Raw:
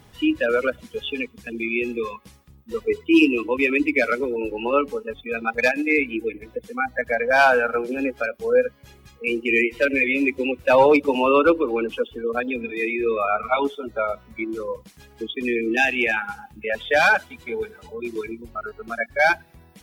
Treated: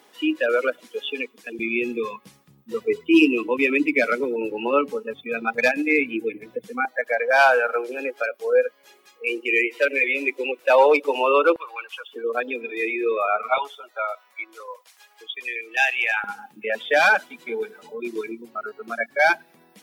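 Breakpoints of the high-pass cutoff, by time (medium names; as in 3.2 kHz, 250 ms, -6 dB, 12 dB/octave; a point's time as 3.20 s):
high-pass 24 dB/octave
300 Hz
from 1.59 s 130 Hz
from 6.85 s 380 Hz
from 11.56 s 920 Hz
from 12.13 s 320 Hz
from 13.58 s 690 Hz
from 16.24 s 210 Hz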